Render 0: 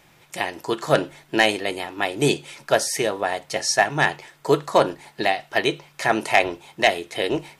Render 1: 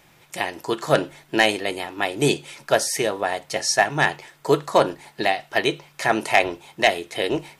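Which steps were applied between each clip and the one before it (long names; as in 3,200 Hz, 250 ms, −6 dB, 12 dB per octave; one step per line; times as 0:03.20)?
high-shelf EQ 12,000 Hz +3 dB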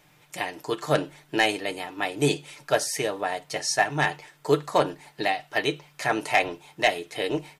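comb filter 6.7 ms, depth 45%
level −5 dB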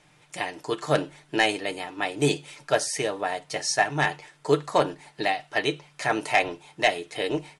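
Butterworth low-pass 11,000 Hz 96 dB per octave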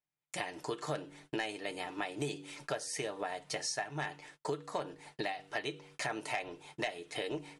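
hum removal 95.77 Hz, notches 5
noise gate −50 dBFS, range −37 dB
downward compressor 6 to 1, threshold −33 dBFS, peak gain reduction 17 dB
level −1.5 dB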